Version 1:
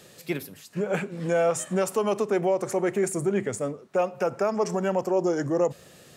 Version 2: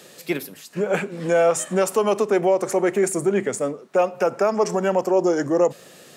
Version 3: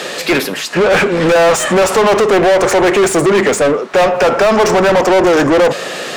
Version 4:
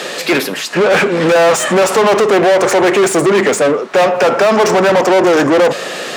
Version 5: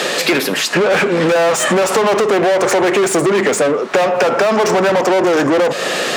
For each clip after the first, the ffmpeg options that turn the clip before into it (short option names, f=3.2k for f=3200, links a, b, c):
-af "highpass=200,volume=5.5dB"
-filter_complex "[0:a]highshelf=f=9.9k:g=-11,asplit=2[a][b];[b]highpass=f=720:p=1,volume=31dB,asoftclip=type=tanh:threshold=-8dB[c];[a][c]amix=inputs=2:normalize=0,lowpass=f=3.2k:p=1,volume=-6dB,volume=4.5dB"
-af "highpass=130"
-af "acompressor=threshold=-17dB:ratio=6,volume=5dB"